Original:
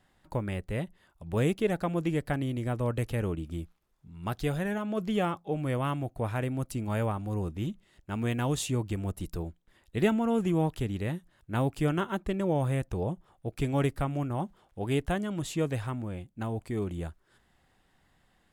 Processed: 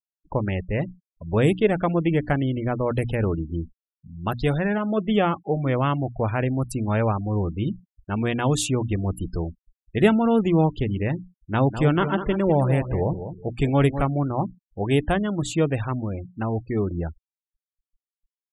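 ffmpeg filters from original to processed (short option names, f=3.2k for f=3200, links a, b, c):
-filter_complex "[0:a]asplit=3[a][b][c];[a]afade=t=out:st=11.66:d=0.02[d];[b]aecho=1:1:201|402|603:0.316|0.0822|0.0214,afade=t=in:st=11.66:d=0.02,afade=t=out:st=14.02:d=0.02[e];[c]afade=t=in:st=14.02:d=0.02[f];[d][e][f]amix=inputs=3:normalize=0,bandreject=f=60:t=h:w=6,bandreject=f=120:t=h:w=6,bandreject=f=180:t=h:w=6,bandreject=f=240:t=h:w=6,bandreject=f=300:t=h:w=6,afftfilt=real='re*gte(hypot(re,im),0.00891)':imag='im*gte(hypot(re,im),0.00891)':win_size=1024:overlap=0.75,volume=8dB"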